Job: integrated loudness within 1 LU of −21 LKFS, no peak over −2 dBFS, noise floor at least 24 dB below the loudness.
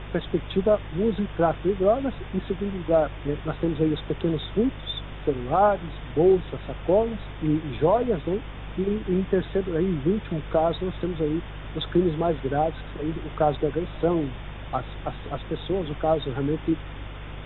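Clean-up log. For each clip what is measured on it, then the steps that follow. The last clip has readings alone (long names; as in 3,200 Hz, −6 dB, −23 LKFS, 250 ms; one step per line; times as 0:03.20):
mains hum 50 Hz; hum harmonics up to 150 Hz; level of the hum −35 dBFS; background noise floor −38 dBFS; target noise floor −50 dBFS; integrated loudness −26.0 LKFS; sample peak −9.0 dBFS; target loudness −21.0 LKFS
→ hum removal 50 Hz, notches 3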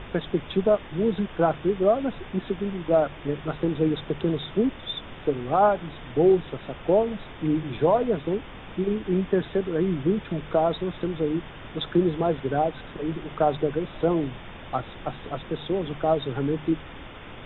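mains hum none found; background noise floor −42 dBFS; target noise floor −50 dBFS
→ noise reduction from a noise print 8 dB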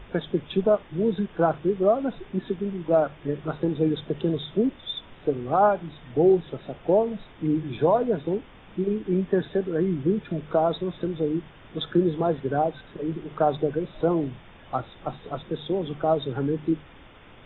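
background noise floor −49 dBFS; target noise floor −50 dBFS
→ noise reduction from a noise print 6 dB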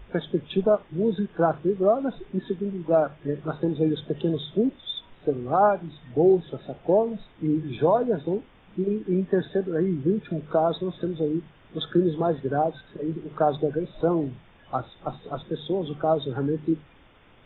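background noise floor −54 dBFS; integrated loudness −26.0 LKFS; sample peak −9.5 dBFS; target loudness −21.0 LKFS
→ level +5 dB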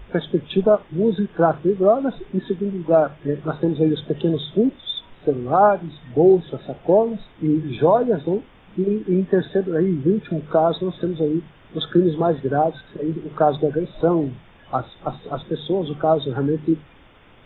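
integrated loudness −21.0 LKFS; sample peak −4.5 dBFS; background noise floor −49 dBFS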